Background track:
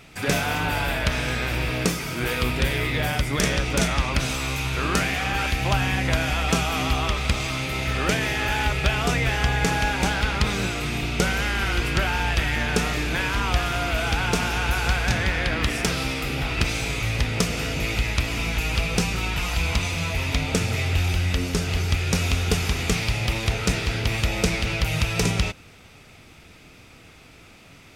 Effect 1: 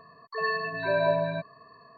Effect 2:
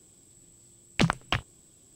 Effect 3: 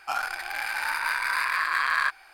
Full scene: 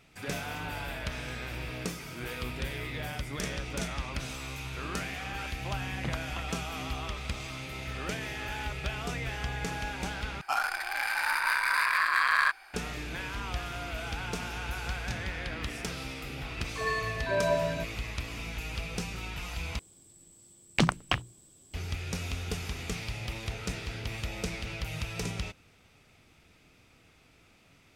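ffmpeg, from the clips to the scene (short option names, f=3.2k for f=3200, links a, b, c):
-filter_complex "[2:a]asplit=2[a][b];[0:a]volume=-12.5dB[c];[a]lowpass=2.7k[d];[b]bandreject=f=60:t=h:w=6,bandreject=f=120:t=h:w=6,bandreject=f=180:t=h:w=6,bandreject=f=240:t=h:w=6,bandreject=f=300:t=h:w=6,bandreject=f=360:t=h:w=6[e];[c]asplit=3[f][g][h];[f]atrim=end=10.414[i];[3:a]atrim=end=2.33,asetpts=PTS-STARTPTS,volume=-0.5dB[j];[g]atrim=start=12.736:end=19.794[k];[e]atrim=end=1.95,asetpts=PTS-STARTPTS,volume=-0.5dB[l];[h]atrim=start=21.736[m];[d]atrim=end=1.95,asetpts=PTS-STARTPTS,volume=-13.5dB,afade=t=in:d=0.004:c=hsin,afade=t=out:st=1.946:d=0.004:c=hsin,adelay=5040[n];[1:a]atrim=end=1.97,asetpts=PTS-STARTPTS,volume=-3dB,afade=t=in:d=0.004:c=hsin,afade=t=out:st=1.966:d=0.004:c=hsin,adelay=16430[o];[i][j]acrossfade=d=0.004:c1=hsin:c2=hsin[p];[p][k]acrossfade=d=0.004:c1=hsin:c2=hsin[q];[q][l]acrossfade=d=0.004:c1=hsin:c2=hsin[r];[r][m]acrossfade=d=0.004:c1=hsin:c2=hsin[s];[s][n][o]amix=inputs=3:normalize=0"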